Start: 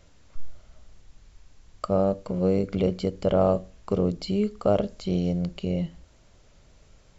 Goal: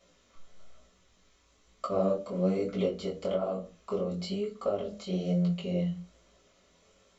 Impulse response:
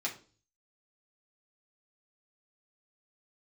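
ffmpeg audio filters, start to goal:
-filter_complex "[1:a]atrim=start_sample=2205,asetrate=70560,aresample=44100[s0];[0:a][s0]afir=irnorm=-1:irlink=0,asettb=1/sr,asplit=3[s1][s2][s3];[s1]atrim=end=2.854[s4];[s2]atrim=start=2.85:end=5.25,asetpts=PTS-STARTPTS,afade=t=in:d=0.004:c=qsin,afade=t=out:st=2.396:d=0.004:c=qsin,acompressor=threshold=0.0562:ratio=12[s5];[s3]atrim=start=5.246[s6];[s4][s5]acrossfade=d=0.004:c1=hsin:c2=qsin[s7];[s7][s6]acrossfade=d=0.004:c1=qsin:c2=hsin,flanger=delay=16.5:depth=7.4:speed=1.1,volume=1.19"

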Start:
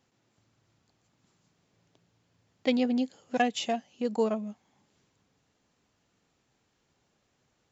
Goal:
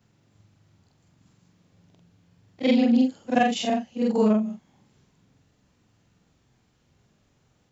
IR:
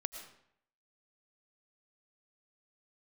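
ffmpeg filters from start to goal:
-af "afftfilt=real='re':imag='-im':win_size=4096:overlap=0.75,bass=f=250:g=9,treble=f=4000:g=-1,volume=2.66"

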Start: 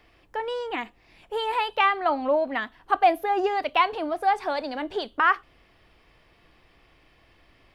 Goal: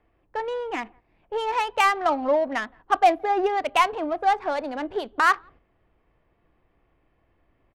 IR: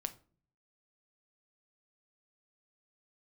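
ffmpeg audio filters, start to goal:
-filter_complex "[0:a]asplit=2[s0][s1];[s1]adelay=170,highpass=300,lowpass=3400,asoftclip=type=hard:threshold=0.126,volume=0.0398[s2];[s0][s2]amix=inputs=2:normalize=0,adynamicsmooth=sensitivity=2.5:basefreq=1500,agate=range=0.447:threshold=0.00316:ratio=16:detection=peak,volume=1.19"

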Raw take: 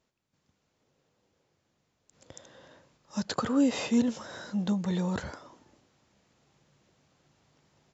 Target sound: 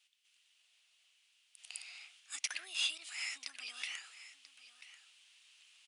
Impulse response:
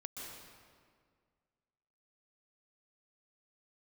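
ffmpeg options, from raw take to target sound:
-filter_complex "[0:a]acompressor=threshold=0.0158:ratio=6,highpass=f=2100:t=q:w=4,asetrate=59535,aresample=44100,asplit=2[s0][s1];[s1]aecho=0:1:988:0.178[s2];[s0][s2]amix=inputs=2:normalize=0,volume=1.58"

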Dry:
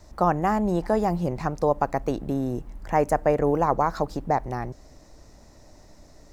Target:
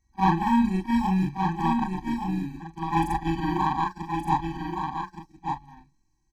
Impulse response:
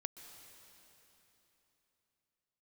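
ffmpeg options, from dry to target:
-filter_complex "[0:a]afftfilt=real='re':imag='-im':win_size=4096:overlap=0.75,bandreject=f=259.6:t=h:w=4,bandreject=f=519.2:t=h:w=4,bandreject=f=778.8:t=h:w=4,bandreject=f=1038.4:t=h:w=4,bandreject=f=1298:t=h:w=4,bandreject=f=1557.6:t=h:w=4,bandreject=f=1817.2:t=h:w=4,bandreject=f=2076.8:t=h:w=4,bandreject=f=2336.4:t=h:w=4,bandreject=f=2596:t=h:w=4,bandreject=f=2855.6:t=h:w=4,bandreject=f=3115.2:t=h:w=4,bandreject=f=3374.8:t=h:w=4,bandreject=f=3634.4:t=h:w=4,bandreject=f=3894:t=h:w=4,bandreject=f=4153.6:t=h:w=4,bandreject=f=4413.2:t=h:w=4,bandreject=f=4672.8:t=h:w=4,bandreject=f=4932.4:t=h:w=4,bandreject=f=5192:t=h:w=4,bandreject=f=5451.6:t=h:w=4,bandreject=f=5711.2:t=h:w=4,bandreject=f=5970.8:t=h:w=4,bandreject=f=6230.4:t=h:w=4,bandreject=f=6490:t=h:w=4,bandreject=f=6749.6:t=h:w=4,bandreject=f=7009.2:t=h:w=4,bandreject=f=7268.8:t=h:w=4,bandreject=f=7528.4:t=h:w=4,bandreject=f=7788:t=h:w=4,bandreject=f=8047.6:t=h:w=4,bandreject=f=8307.2:t=h:w=4,bandreject=f=8566.8:t=h:w=4,bandreject=f=8826.4:t=h:w=4,bandreject=f=9086:t=h:w=4,bandreject=f=9345.6:t=h:w=4,bandreject=f=9605.2:t=h:w=4,bandreject=f=9864.8:t=h:w=4,bandreject=f=10124.4:t=h:w=4,aeval=exprs='val(0)+0.0316*sin(2*PI*1900*n/s)':c=same,asplit=2[s0][s1];[s1]alimiter=limit=0.0794:level=0:latency=1:release=127,volume=0.891[s2];[s0][s2]amix=inputs=2:normalize=0,asetrate=48091,aresample=44100,atempo=0.917004,asoftclip=type=tanh:threshold=0.158,agate=range=0.0355:threshold=0.0708:ratio=16:detection=peak,aecho=1:1:1171:0.531,afftfilt=real='re*eq(mod(floor(b*sr/1024/380),2),0)':imag='im*eq(mod(floor(b*sr/1024/380),2),0)':win_size=1024:overlap=0.75,volume=2.37"

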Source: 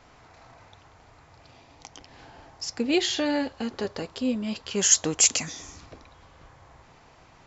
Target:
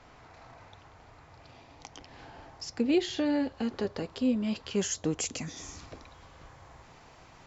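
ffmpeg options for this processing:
-filter_complex "[0:a]asetnsamples=n=441:p=0,asendcmd='5.57 highshelf g 3',highshelf=f=6300:g=-7.5,acrossover=split=470[s0][s1];[s1]acompressor=threshold=0.00891:ratio=2[s2];[s0][s2]amix=inputs=2:normalize=0"

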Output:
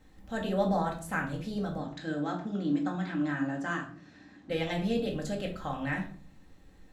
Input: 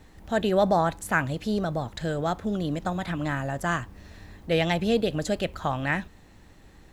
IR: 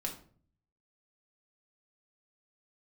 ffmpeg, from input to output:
-filter_complex "[0:a]asettb=1/sr,asplit=3[s0][s1][s2];[s0]atrim=end=1.784[s3];[s1]atrim=start=1.78:end=4.5,asetpts=PTS-STARTPTS,afade=t=in:d=0.004:c=qsin,afade=t=out:st=2.716:d=0.004:c=qsin,highpass=160,equalizer=f=300:t=q:w=4:g=10,equalizer=f=490:t=q:w=4:g=-5,equalizer=f=1600:t=q:w=4:g=5,lowpass=f=7300:w=0.5412,lowpass=f=7300:w=1.3066[s4];[s2]atrim=start=4.496[s5];[s3][s4]acrossfade=d=0.004:c1=hsin:c2=qsin[s6];[s6][s5]acrossfade=d=0.004:c1=qsin:c2=hsin[s7];[1:a]atrim=start_sample=2205[s8];[s7][s8]afir=irnorm=-1:irlink=0,volume=0.376"

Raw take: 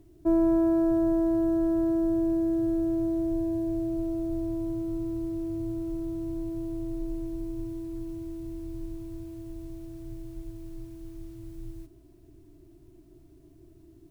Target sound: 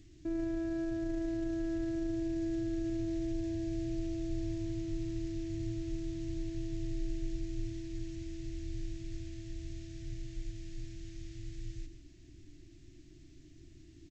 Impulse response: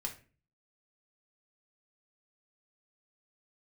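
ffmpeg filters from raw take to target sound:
-filter_complex "[0:a]asplit=2[s0][s1];[s1]adelay=116.6,volume=0.224,highshelf=f=4000:g=-2.62[s2];[s0][s2]amix=inputs=2:normalize=0,asplit=2[s3][s4];[1:a]atrim=start_sample=2205,asetrate=61740,aresample=44100,adelay=128[s5];[s4][s5]afir=irnorm=-1:irlink=0,volume=0.266[s6];[s3][s6]amix=inputs=2:normalize=0,alimiter=limit=0.0631:level=0:latency=1:release=30,firequalizer=gain_entry='entry(260,0);entry(380,-9);entry(1000,-16);entry(1800,8)':delay=0.05:min_phase=1" -ar 16000 -c:a g722

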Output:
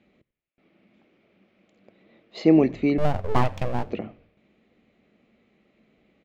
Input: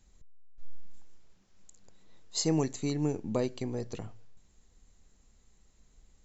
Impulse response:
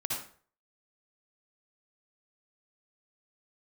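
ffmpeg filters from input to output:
-filter_complex "[0:a]highpass=210,equalizer=f=220:t=q:w=4:g=7,equalizer=f=330:t=q:w=4:g=5,equalizer=f=600:t=q:w=4:g=6,equalizer=f=950:t=q:w=4:g=-10,equalizer=f=1600:t=q:w=4:g=-6,equalizer=f=2300:t=q:w=4:g=6,lowpass=f=2900:w=0.5412,lowpass=f=2900:w=1.3066,asettb=1/sr,asplit=3[s0][s1][s2];[s0]atrim=end=2.984[s3];[s1]atrim=start=2.98:end=3.87,asetpts=PTS-STARTPTS,afade=t=in:d=0.004:c=qsin,afade=t=out:st=0.886:d=0.004:c=qsin,aeval=exprs='abs(val(0))':c=same[s4];[s2]atrim=start=3.866[s5];[s3][s4]acrossfade=d=0.004:c1=hsin:c2=qsin[s6];[s6][s5]acrossfade=d=0.004:c1=qsin:c2=hsin,asplit=4[s7][s8][s9][s10];[s8]adelay=88,afreqshift=-94,volume=0.0794[s11];[s9]adelay=176,afreqshift=-188,volume=0.0359[s12];[s10]adelay=264,afreqshift=-282,volume=0.016[s13];[s7][s11][s12][s13]amix=inputs=4:normalize=0,volume=2.82"

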